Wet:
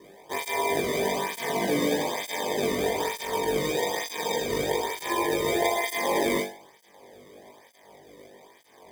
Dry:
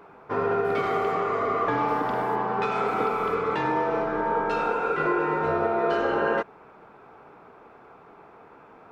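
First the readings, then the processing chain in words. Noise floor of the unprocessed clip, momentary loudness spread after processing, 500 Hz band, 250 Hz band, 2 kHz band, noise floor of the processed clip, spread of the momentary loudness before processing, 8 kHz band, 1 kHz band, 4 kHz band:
-51 dBFS, 5 LU, -1.5 dB, 0.0 dB, -0.5 dB, -56 dBFS, 2 LU, no reading, -5.5 dB, +12.0 dB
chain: resonant high shelf 2.5 kHz +8.5 dB, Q 1.5; sample-and-hold 32×; on a send: flutter echo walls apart 3.5 m, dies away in 0.39 s; on the sum: cancelling through-zero flanger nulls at 1.1 Hz, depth 1.3 ms

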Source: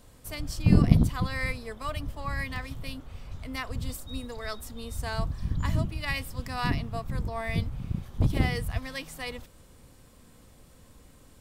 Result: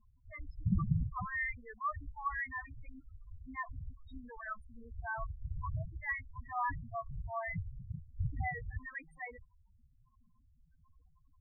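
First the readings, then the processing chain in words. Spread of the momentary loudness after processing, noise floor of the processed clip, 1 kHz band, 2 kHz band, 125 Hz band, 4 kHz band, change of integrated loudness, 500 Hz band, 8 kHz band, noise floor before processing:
16 LU, -68 dBFS, -2.5 dB, -4.0 dB, -12.0 dB, under -35 dB, -9.5 dB, -12.0 dB, under -35 dB, -55 dBFS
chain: high-order bell 1.2 kHz +10.5 dB; feedback comb 370 Hz, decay 0.4 s, harmonics all, mix 30%; loudest bins only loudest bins 4; tape noise reduction on one side only decoder only; trim -6.5 dB

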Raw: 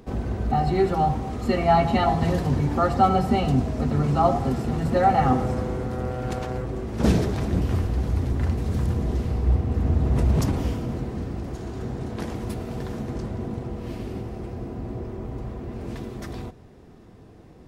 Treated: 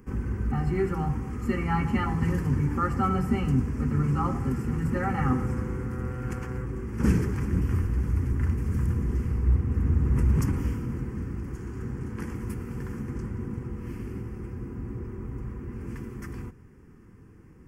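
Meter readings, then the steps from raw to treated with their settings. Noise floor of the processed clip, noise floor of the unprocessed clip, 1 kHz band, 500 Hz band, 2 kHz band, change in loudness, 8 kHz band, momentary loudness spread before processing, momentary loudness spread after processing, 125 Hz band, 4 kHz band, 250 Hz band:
-51 dBFS, -48 dBFS, -10.5 dB, -9.5 dB, -2.5 dB, -4.0 dB, -5.0 dB, 14 LU, 12 LU, -2.0 dB, under -10 dB, -3.0 dB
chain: static phaser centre 1.6 kHz, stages 4; trim -1.5 dB

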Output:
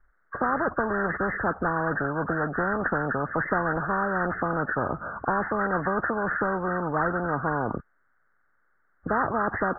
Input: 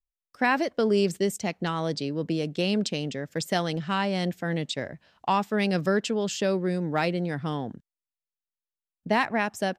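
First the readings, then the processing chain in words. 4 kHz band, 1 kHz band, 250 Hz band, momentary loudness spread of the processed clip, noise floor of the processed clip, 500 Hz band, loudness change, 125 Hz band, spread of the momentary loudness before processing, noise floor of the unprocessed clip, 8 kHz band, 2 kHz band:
under -40 dB, +4.0 dB, -2.5 dB, 3 LU, -68 dBFS, -1.0 dB, +0.5 dB, -2.0 dB, 8 LU, under -85 dBFS, under -40 dB, +4.5 dB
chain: knee-point frequency compression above 1.1 kHz 4:1; elliptic low-pass 1.5 kHz, stop band 40 dB; spectrum-flattening compressor 4:1; trim +1.5 dB

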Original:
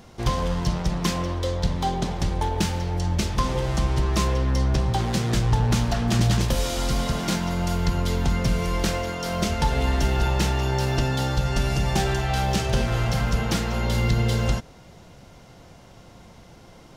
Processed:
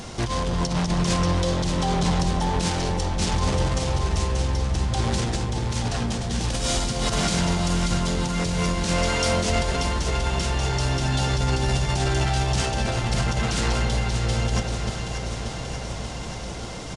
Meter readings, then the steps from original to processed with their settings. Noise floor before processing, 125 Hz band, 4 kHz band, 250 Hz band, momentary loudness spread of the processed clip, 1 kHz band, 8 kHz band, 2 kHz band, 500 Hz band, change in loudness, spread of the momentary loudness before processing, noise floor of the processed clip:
-48 dBFS, -0.5 dB, +3.0 dB, 0.0 dB, 7 LU, +0.5 dB, +4.0 dB, +1.5 dB, +0.5 dB, 0.0 dB, 4 LU, -32 dBFS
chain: treble shelf 3.5 kHz +7.5 dB; in parallel at +1.5 dB: peak limiter -19.5 dBFS, peak gain reduction 10.5 dB; on the sum: compressor with a negative ratio -21 dBFS, ratio -0.5; saturation -19.5 dBFS, distortion -11 dB; on a send: echo whose repeats swap between lows and highs 292 ms, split 950 Hz, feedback 84%, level -5 dB; on the sum: resampled via 22.05 kHz

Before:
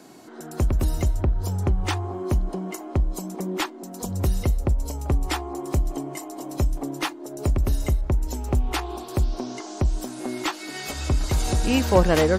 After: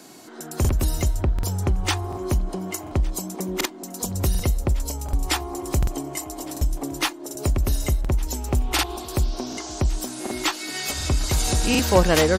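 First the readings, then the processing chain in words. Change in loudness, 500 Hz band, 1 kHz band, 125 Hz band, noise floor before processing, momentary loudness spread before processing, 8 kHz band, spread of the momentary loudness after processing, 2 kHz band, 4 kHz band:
+1.0 dB, +0.5 dB, +1.0 dB, 0.0 dB, -39 dBFS, 8 LU, +7.5 dB, 8 LU, +3.5 dB, +6.0 dB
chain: treble shelf 2.2 kHz +8 dB; delay 1161 ms -22.5 dB; crackling interface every 0.74 s, samples 2048, repeat, from 0.60 s

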